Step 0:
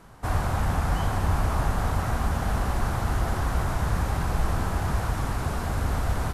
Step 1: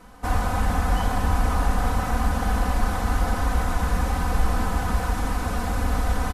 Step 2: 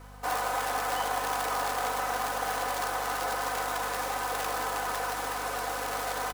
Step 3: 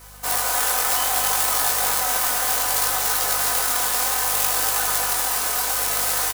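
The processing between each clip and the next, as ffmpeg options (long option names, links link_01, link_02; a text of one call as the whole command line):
ffmpeg -i in.wav -af "aecho=1:1:4:0.97" out.wav
ffmpeg -i in.wav -af "acrusher=bits=4:mode=log:mix=0:aa=0.000001,highpass=frequency=400:width=0.5412,highpass=frequency=400:width=1.3066,aeval=exprs='val(0)+0.00501*(sin(2*PI*50*n/s)+sin(2*PI*2*50*n/s)/2+sin(2*PI*3*50*n/s)/3+sin(2*PI*4*50*n/s)/4+sin(2*PI*5*50*n/s)/5)':channel_layout=same,volume=-1.5dB" out.wav
ffmpeg -i in.wav -filter_complex "[0:a]crystalizer=i=6:c=0,asplit=2[link_01][link_02];[link_02]aecho=0:1:240:0.596[link_03];[link_01][link_03]amix=inputs=2:normalize=0,flanger=delay=18:depth=6.4:speed=0.64,volume=2.5dB" out.wav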